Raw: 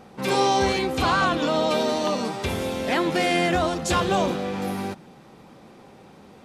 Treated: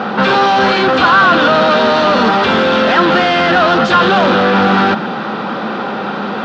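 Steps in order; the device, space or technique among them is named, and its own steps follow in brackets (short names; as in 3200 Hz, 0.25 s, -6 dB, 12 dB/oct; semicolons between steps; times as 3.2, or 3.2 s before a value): overdrive pedal into a guitar cabinet (overdrive pedal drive 36 dB, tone 5500 Hz, clips at -8.5 dBFS; speaker cabinet 100–4000 Hz, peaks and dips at 210 Hz +9 dB, 1400 Hz +9 dB, 2200 Hz -7 dB); gain +3 dB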